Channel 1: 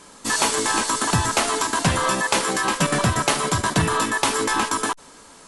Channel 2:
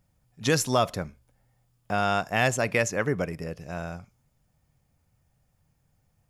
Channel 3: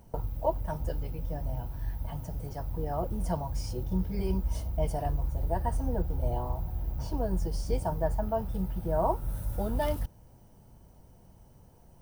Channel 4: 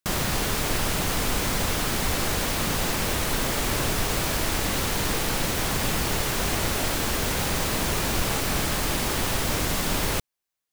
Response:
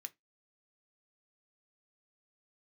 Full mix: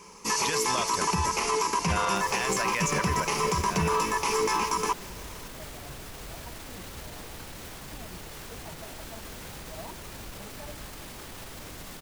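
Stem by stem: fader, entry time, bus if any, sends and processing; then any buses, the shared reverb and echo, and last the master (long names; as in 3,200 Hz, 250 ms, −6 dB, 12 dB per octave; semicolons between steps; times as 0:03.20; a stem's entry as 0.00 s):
−5.0 dB, 0.00 s, no send, EQ curve with evenly spaced ripples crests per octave 0.8, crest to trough 13 dB
−0.5 dB, 0.00 s, no send, tilt shelving filter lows −7.5 dB; downward compressor 2.5 to 1, threshold −24 dBFS, peak gain reduction 6 dB
−14.0 dB, 0.80 s, no send, through-zero flanger with one copy inverted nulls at 1.8 Hz, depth 6.6 ms
−9.5 dB, 2.10 s, no send, brickwall limiter −23.5 dBFS, peak gain reduction 11.5 dB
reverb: not used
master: brickwall limiter −16.5 dBFS, peak gain reduction 9 dB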